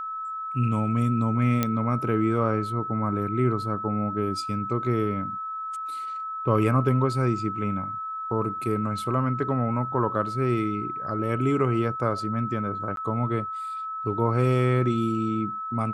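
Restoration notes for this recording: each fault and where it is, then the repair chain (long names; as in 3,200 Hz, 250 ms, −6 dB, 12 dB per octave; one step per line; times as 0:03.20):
whistle 1,300 Hz −30 dBFS
0:01.63: click −9 dBFS
0:12.96–0:12.97: drop-out 12 ms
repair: click removal
notch filter 1,300 Hz, Q 30
repair the gap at 0:12.96, 12 ms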